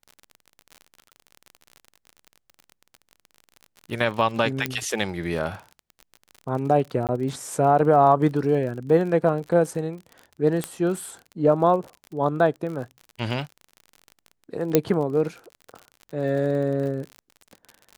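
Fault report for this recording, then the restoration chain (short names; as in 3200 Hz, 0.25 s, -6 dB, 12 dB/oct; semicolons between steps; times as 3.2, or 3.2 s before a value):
crackle 40/s -32 dBFS
4.66 pop -9 dBFS
7.07–7.09 gap 18 ms
10.64 pop -12 dBFS
14.75 pop -3 dBFS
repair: de-click; interpolate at 7.07, 18 ms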